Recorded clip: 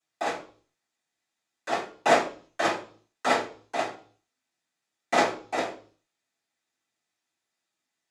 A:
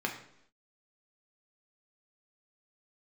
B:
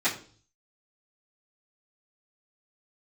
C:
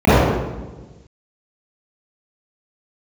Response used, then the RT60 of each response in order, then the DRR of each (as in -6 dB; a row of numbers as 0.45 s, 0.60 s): B; 0.75 s, 0.45 s, 1.2 s; 1.0 dB, -16.0 dB, -18.5 dB